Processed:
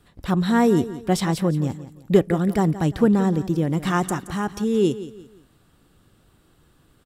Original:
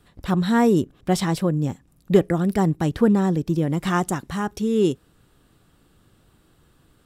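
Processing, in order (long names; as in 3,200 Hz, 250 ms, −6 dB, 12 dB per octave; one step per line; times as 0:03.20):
repeating echo 173 ms, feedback 34%, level −14.5 dB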